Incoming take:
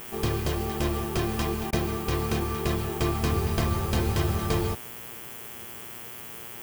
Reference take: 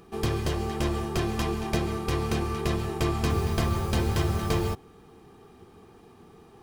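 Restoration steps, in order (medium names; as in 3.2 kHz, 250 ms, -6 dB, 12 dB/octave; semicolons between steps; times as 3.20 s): de-hum 117.6 Hz, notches 29; interpolate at 1.71 s, 15 ms; noise print and reduce 12 dB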